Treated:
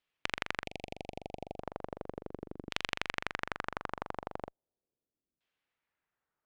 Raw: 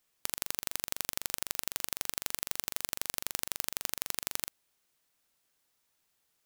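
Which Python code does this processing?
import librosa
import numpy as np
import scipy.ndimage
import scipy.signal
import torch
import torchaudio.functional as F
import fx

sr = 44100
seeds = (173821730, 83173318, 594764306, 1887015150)

y = fx.cheby_harmonics(x, sr, harmonics=(7,), levels_db=(-15,), full_scale_db=-2.5)
y = fx.ellip_bandstop(y, sr, low_hz=750.0, high_hz=2400.0, order=3, stop_db=50, at=(0.64, 1.59), fade=0.02)
y = fx.filter_lfo_lowpass(y, sr, shape='saw_down', hz=0.37, low_hz=300.0, high_hz=3200.0, q=1.6)
y = F.gain(torch.from_numpy(y), 5.5).numpy()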